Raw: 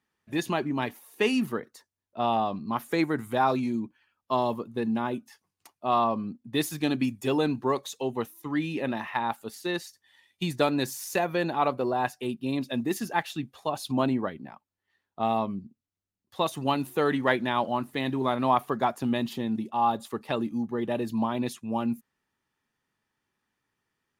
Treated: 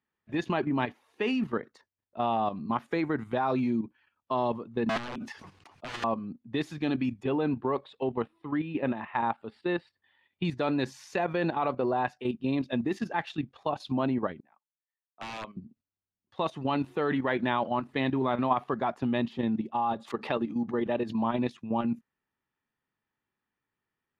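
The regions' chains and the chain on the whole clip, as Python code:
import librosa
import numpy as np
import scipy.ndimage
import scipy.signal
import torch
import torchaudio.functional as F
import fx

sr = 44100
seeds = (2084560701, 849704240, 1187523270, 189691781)

y = fx.chain(x, sr, fx.high_shelf(hz=11000.0, db=5.5),
    fx.overflow_wrap(gain_db=25.5),
    fx.sustainer(db_per_s=54.0), at=(4.89, 6.04))
y = fx.chain(y, sr, fx.block_float(bits=7),
    fx.moving_average(points=7),
    fx.peak_eq(hz=1900.0, db=-3.0, octaves=0.23), at=(7.23, 10.45))
y = fx.chain(y, sr, fx.highpass(hz=1400.0, slope=6),
    fx.overflow_wrap(gain_db=27.5),
    fx.band_widen(depth_pct=70), at=(14.4, 15.57))
y = fx.chain(y, sr, fx.highpass(hz=170.0, slope=6),
    fx.pre_swell(db_per_s=150.0), at=(19.98, 21.23))
y = fx.level_steps(y, sr, step_db=10)
y = scipy.signal.sosfilt(scipy.signal.butter(2, 3200.0, 'lowpass', fs=sr, output='sos'), y)
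y = y * 10.0 ** (3.0 / 20.0)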